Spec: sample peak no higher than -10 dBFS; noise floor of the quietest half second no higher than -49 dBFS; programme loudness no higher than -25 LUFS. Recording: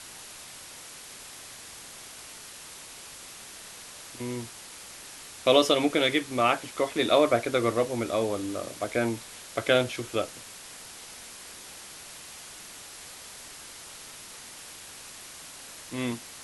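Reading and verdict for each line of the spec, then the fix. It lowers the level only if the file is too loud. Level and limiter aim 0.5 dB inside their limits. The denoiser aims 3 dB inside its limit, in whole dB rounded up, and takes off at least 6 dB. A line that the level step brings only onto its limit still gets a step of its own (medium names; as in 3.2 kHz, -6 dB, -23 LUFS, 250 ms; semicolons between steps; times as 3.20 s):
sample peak -7.0 dBFS: fail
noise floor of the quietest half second -45 dBFS: fail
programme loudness -26.5 LUFS: pass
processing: noise reduction 7 dB, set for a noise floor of -45 dBFS; peak limiter -10.5 dBFS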